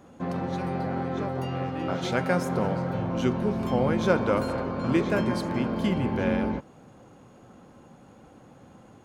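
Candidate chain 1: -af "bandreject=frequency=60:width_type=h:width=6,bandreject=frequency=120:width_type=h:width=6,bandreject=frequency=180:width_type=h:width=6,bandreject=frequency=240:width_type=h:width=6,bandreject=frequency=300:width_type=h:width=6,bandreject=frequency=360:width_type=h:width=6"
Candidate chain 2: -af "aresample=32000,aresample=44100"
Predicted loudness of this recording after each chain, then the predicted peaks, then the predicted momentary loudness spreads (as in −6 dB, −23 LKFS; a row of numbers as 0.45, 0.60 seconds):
−27.5, −27.0 LKFS; −10.0, −8.5 dBFS; 7, 7 LU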